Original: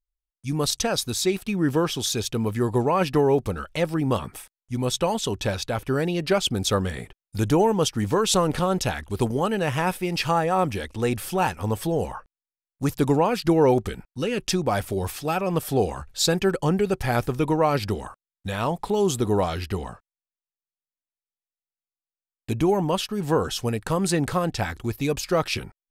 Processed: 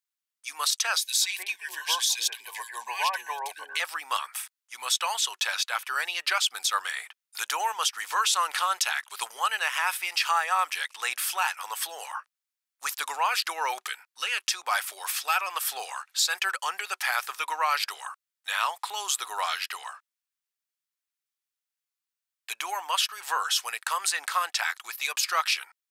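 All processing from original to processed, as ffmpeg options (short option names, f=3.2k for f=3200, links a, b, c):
-filter_complex "[0:a]asettb=1/sr,asplit=3[a][b][c];[a]atrim=end=1.004[d];[b]atrim=start=1:end=3.8,asetpts=PTS-STARTPTS,afade=t=in:d=0.004:c=qsin,afade=t=out:st=2.796:d=0.004:c=qsin,asuperstop=centerf=1300:order=12:qfactor=3.9,acrossover=split=340|1700[e][f][g];[f]adelay=130[h];[e]adelay=430[i];[i][h][g]amix=inputs=3:normalize=0,atrim=end_sample=123480[j];[c]atrim=start=3.796[k];[d][j]acrossfade=d=0.004:c1=hsin:c2=qsin[l];[l][k]acrossfade=d=0.004:c1=qsin:c2=hsin,highpass=f=1.1k:w=0.5412,highpass=f=1.1k:w=1.3066,alimiter=limit=-19.5dB:level=0:latency=1:release=101,volume=6dB"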